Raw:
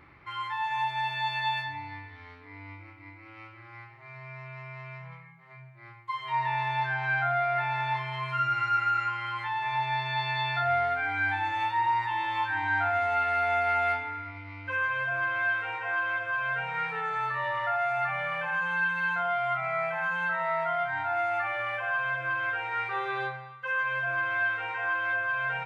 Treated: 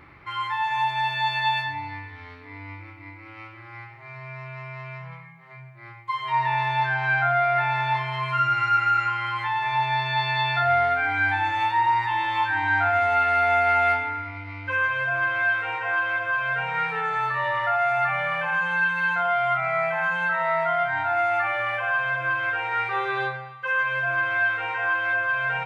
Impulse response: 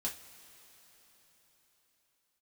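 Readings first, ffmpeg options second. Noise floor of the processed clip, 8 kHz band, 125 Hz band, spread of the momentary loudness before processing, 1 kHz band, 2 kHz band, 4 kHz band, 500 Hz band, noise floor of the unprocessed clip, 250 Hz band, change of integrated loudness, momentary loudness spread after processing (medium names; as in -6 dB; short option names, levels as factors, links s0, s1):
-44 dBFS, no reading, +5.5 dB, 17 LU, +5.5 dB, +5.5 dB, +5.5 dB, +5.5 dB, -50 dBFS, +5.5 dB, +5.5 dB, 18 LU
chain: -filter_complex "[0:a]asplit=2[s0][s1];[1:a]atrim=start_sample=2205,adelay=92[s2];[s1][s2]afir=irnorm=-1:irlink=0,volume=0.133[s3];[s0][s3]amix=inputs=2:normalize=0,volume=1.88"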